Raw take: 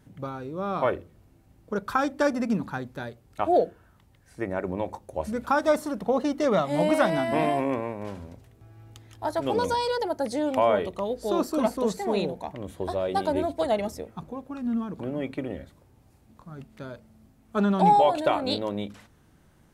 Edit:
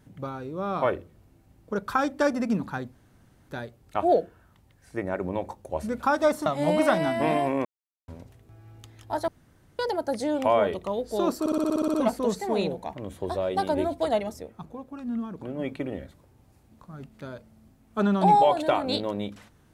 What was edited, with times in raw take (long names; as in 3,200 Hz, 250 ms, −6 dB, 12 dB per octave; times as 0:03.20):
0:02.93: splice in room tone 0.56 s
0:05.90–0:06.58: remove
0:07.77–0:08.20: silence
0:09.40–0:09.91: fill with room tone
0:11.52: stutter 0.06 s, 10 plays
0:13.78–0:15.17: clip gain −3 dB